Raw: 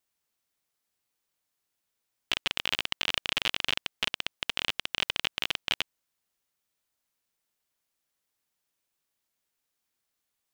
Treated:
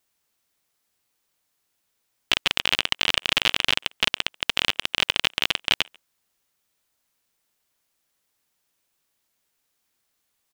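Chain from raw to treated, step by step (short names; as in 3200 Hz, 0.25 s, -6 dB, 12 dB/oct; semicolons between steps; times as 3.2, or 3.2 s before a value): speakerphone echo 0.14 s, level -25 dB; gain +7.5 dB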